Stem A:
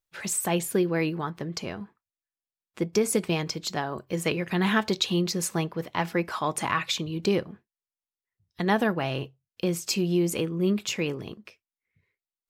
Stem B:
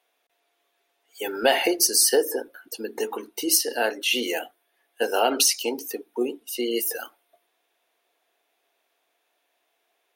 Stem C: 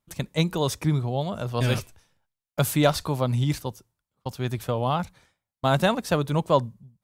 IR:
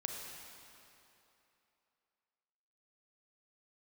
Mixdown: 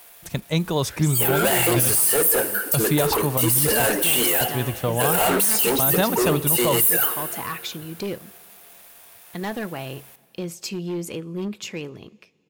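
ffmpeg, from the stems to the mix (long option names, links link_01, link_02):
-filter_complex "[0:a]volume=20dB,asoftclip=hard,volume=-20dB,adelay=750,volume=-4dB,asplit=2[link_01][link_02];[link_02]volume=-22dB[link_03];[1:a]asplit=2[link_04][link_05];[link_05]highpass=frequency=720:poles=1,volume=36dB,asoftclip=type=tanh:threshold=-5dB[link_06];[link_04][link_06]amix=inputs=2:normalize=0,lowpass=frequency=3100:poles=1,volume=-6dB,aexciter=amount=13.4:drive=3:freq=8000,acrusher=bits=5:mix=0:aa=0.5,volume=-11dB,asplit=2[link_07][link_08];[link_08]volume=-6dB[link_09];[2:a]adelay=150,volume=2.5dB[link_10];[3:a]atrim=start_sample=2205[link_11];[link_03][link_09]amix=inputs=2:normalize=0[link_12];[link_12][link_11]afir=irnorm=-1:irlink=0[link_13];[link_01][link_07][link_10][link_13]amix=inputs=4:normalize=0,alimiter=limit=-10dB:level=0:latency=1:release=19"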